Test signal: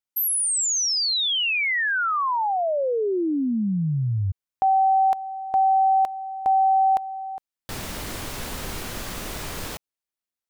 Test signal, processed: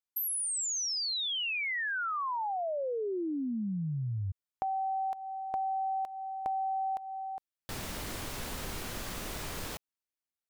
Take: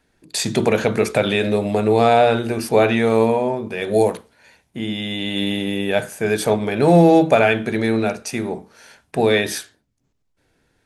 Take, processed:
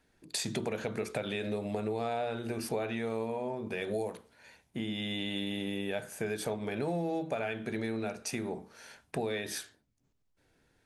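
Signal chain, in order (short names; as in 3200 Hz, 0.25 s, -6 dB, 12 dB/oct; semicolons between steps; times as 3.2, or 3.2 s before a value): compressor 5:1, threshold -26 dBFS; gain -6 dB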